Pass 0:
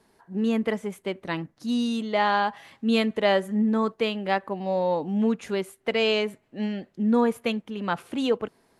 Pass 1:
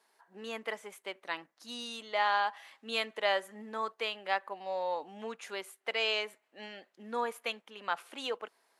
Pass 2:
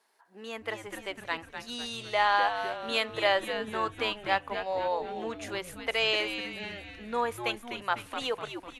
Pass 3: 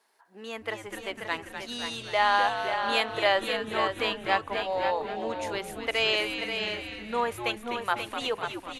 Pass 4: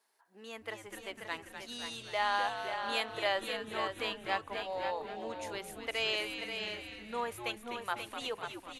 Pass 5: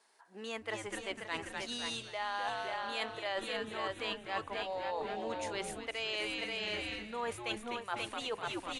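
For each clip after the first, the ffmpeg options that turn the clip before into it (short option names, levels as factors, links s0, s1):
-af "highpass=740,volume=0.631"
-filter_complex "[0:a]asplit=7[s0][s1][s2][s3][s4][s5][s6];[s1]adelay=250,afreqshift=-120,volume=0.376[s7];[s2]adelay=500,afreqshift=-240,volume=0.193[s8];[s3]adelay=750,afreqshift=-360,volume=0.0977[s9];[s4]adelay=1000,afreqshift=-480,volume=0.0501[s10];[s5]adelay=1250,afreqshift=-600,volume=0.0254[s11];[s6]adelay=1500,afreqshift=-720,volume=0.013[s12];[s0][s7][s8][s9][s10][s11][s12]amix=inputs=7:normalize=0,dynaudnorm=f=500:g=3:m=1.58"
-af "aecho=1:1:534:0.447,volume=1.19"
-af "highshelf=f=5500:g=6,volume=0.376"
-af "areverse,acompressor=threshold=0.00794:ratio=6,areverse,aresample=22050,aresample=44100,volume=2.37"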